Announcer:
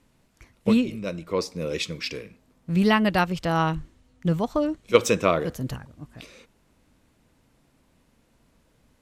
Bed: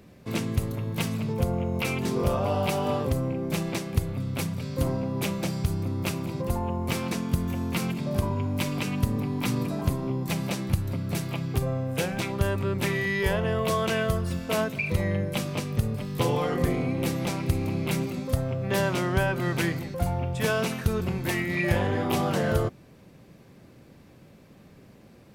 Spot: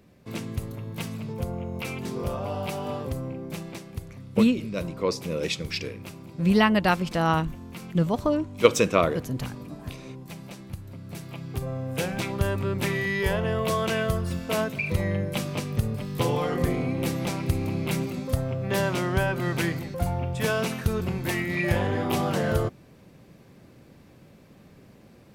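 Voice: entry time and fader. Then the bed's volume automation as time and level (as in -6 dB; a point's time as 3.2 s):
3.70 s, 0.0 dB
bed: 3.31 s -5 dB
4.17 s -12 dB
10.87 s -12 dB
12.07 s 0 dB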